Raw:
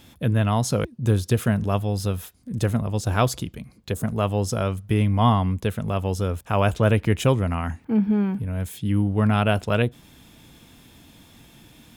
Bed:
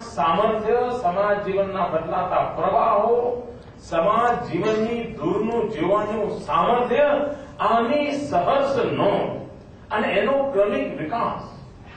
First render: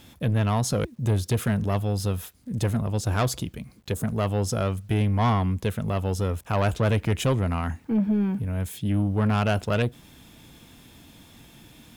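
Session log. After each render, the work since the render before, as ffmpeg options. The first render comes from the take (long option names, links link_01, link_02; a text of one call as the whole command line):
ffmpeg -i in.wav -af "asoftclip=type=tanh:threshold=-16.5dB,acrusher=bits=10:mix=0:aa=0.000001" out.wav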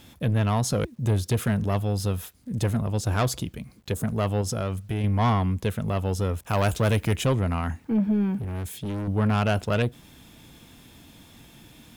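ffmpeg -i in.wav -filter_complex "[0:a]asettb=1/sr,asplit=3[link_01][link_02][link_03];[link_01]atrim=end=4.414[link_04];[link_02]atrim=start=4.41:end=5.04,asetpts=PTS-STARTPTS,afade=type=in:duration=0.004:curve=qsin,afade=type=out:start_time=0.626:duration=0.004:curve=qsin,acompressor=threshold=-24dB:ratio=6:attack=3.2:release=140:knee=1:detection=peak[link_05];[link_03]atrim=start=5.036[link_06];[link_04][link_05]acrossfade=duration=0.004:curve1=hsin:curve2=qsin[link_07];[link_07][link_06]acrossfade=duration=0.004:curve1=qsin:curve2=hsin,asettb=1/sr,asplit=3[link_08][link_09][link_10];[link_08]atrim=end=6.474[link_11];[link_09]atrim=start=6.47:end=7.16,asetpts=PTS-STARTPTS,afade=type=in:duration=0.004:curve=qsin,afade=type=out:start_time=0.686:duration=0.004:curve=qsin,highshelf=frequency=5700:gain=11[link_12];[link_10]atrim=start=7.156[link_13];[link_11][link_12]acrossfade=duration=0.004:curve1=hsin:curve2=qsin[link_14];[link_14][link_13]acrossfade=duration=0.004:curve1=qsin:curve2=hsin,asettb=1/sr,asplit=3[link_15][link_16][link_17];[link_15]atrim=end=8.384[link_18];[link_16]atrim=start=8.38:end=9.08,asetpts=PTS-STARTPTS,afade=type=in:duration=0.004:curve=qsin,afade=type=out:start_time=0.696:duration=0.004:curve=qsin,asoftclip=type=hard:threshold=-28dB[link_19];[link_17]atrim=start=9.076[link_20];[link_18][link_19]acrossfade=duration=0.004:curve1=hsin:curve2=qsin[link_21];[link_21][link_20]acrossfade=duration=0.004:curve1=qsin:curve2=hsin" out.wav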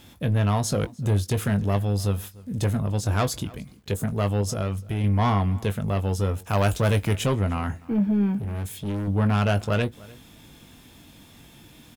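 ffmpeg -i in.wav -filter_complex "[0:a]asplit=2[link_01][link_02];[link_02]adelay=20,volume=-10dB[link_03];[link_01][link_03]amix=inputs=2:normalize=0,asplit=2[link_04][link_05];[link_05]adelay=297.4,volume=-22dB,highshelf=frequency=4000:gain=-6.69[link_06];[link_04][link_06]amix=inputs=2:normalize=0" out.wav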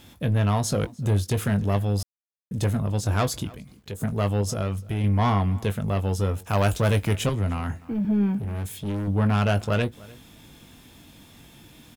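ffmpeg -i in.wav -filter_complex "[0:a]asplit=3[link_01][link_02][link_03];[link_01]afade=type=out:start_time=3.53:duration=0.02[link_04];[link_02]acompressor=threshold=-44dB:ratio=1.5:attack=3.2:release=140:knee=1:detection=peak,afade=type=in:start_time=3.53:duration=0.02,afade=type=out:start_time=4:duration=0.02[link_05];[link_03]afade=type=in:start_time=4:duration=0.02[link_06];[link_04][link_05][link_06]amix=inputs=3:normalize=0,asettb=1/sr,asplit=3[link_07][link_08][link_09];[link_07]atrim=end=7.294[link_10];[link_08]atrim=start=7.29:end=8.05,asetpts=PTS-STARTPTS,afade=type=in:duration=0.004:curve=qsin,afade=type=out:start_time=0.756:duration=0.004:curve=qsin,acrossover=split=160|3000[link_11][link_12][link_13];[link_12]acompressor=threshold=-27dB:ratio=6:attack=3.2:release=140:knee=2.83:detection=peak[link_14];[link_11][link_14][link_13]amix=inputs=3:normalize=0[link_15];[link_09]atrim=start=8.046[link_16];[link_10][link_15]acrossfade=duration=0.004:curve1=hsin:curve2=qsin[link_17];[link_17][link_16]acrossfade=duration=0.004:curve1=qsin:curve2=hsin,asplit=3[link_18][link_19][link_20];[link_18]atrim=end=2.03,asetpts=PTS-STARTPTS,afade=type=out:start_time=2.026:duration=0.004:curve=hsin[link_21];[link_19]atrim=start=2.03:end=2.51,asetpts=PTS-STARTPTS,volume=0[link_22];[link_20]atrim=start=2.51,asetpts=PTS-STARTPTS,afade=type=in:duration=0.004:curve=hsin[link_23];[link_21][link_22][link_23]concat=n=3:v=0:a=1" out.wav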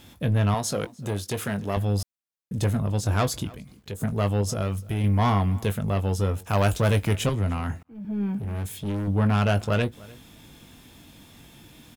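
ffmpeg -i in.wav -filter_complex "[0:a]asettb=1/sr,asplit=3[link_01][link_02][link_03];[link_01]atrim=end=0.544[link_04];[link_02]atrim=start=0.54:end=1.77,asetpts=PTS-STARTPTS,afade=type=in:duration=0.004:curve=qsin,afade=type=out:start_time=1.226:duration=0.004:curve=qsin,highpass=frequency=290:poles=1[link_05];[link_03]atrim=start=1.766[link_06];[link_04][link_05]acrossfade=duration=0.004:curve1=hsin:curve2=qsin[link_07];[link_07][link_06]acrossfade=duration=0.004:curve1=qsin:curve2=hsin,asettb=1/sr,asplit=3[link_08][link_09][link_10];[link_08]atrim=end=4.614[link_11];[link_09]atrim=start=4.61:end=5.78,asetpts=PTS-STARTPTS,afade=type=in:duration=0.004:curve=qsin,afade=type=out:start_time=1.166:duration=0.004:curve=qsin,highshelf=frequency=8600:gain=6.5[link_12];[link_10]atrim=start=5.776[link_13];[link_11][link_12]acrossfade=duration=0.004:curve1=hsin:curve2=qsin[link_14];[link_14][link_13]acrossfade=duration=0.004:curve1=qsin:curve2=hsin,asplit=2[link_15][link_16];[link_15]atrim=end=7.83,asetpts=PTS-STARTPTS,afade=type=out:start_time=7.826:duration=0.004:curve=hsin[link_17];[link_16]atrim=start=7.83,asetpts=PTS-STARTPTS,afade=type=in:duration=0.7[link_18];[link_17][link_18]concat=n=2:v=0:a=1" out.wav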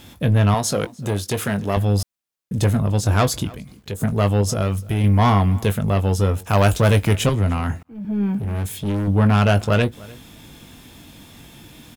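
ffmpeg -i in.wav -af "volume=6dB" out.wav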